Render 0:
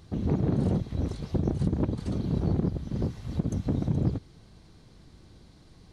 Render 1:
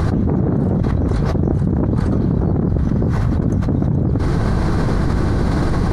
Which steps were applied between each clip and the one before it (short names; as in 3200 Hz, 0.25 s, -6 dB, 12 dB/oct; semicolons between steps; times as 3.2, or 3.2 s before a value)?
resonant high shelf 2100 Hz -11 dB, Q 1.5; fast leveller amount 100%; gain +5.5 dB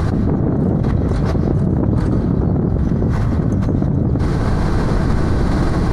reverb RT60 1.1 s, pre-delay 0.1 s, DRR 7 dB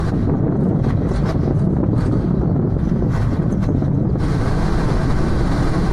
flange 1.7 Hz, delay 5 ms, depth 3.1 ms, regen -46%; gain +3 dB; AAC 64 kbps 44100 Hz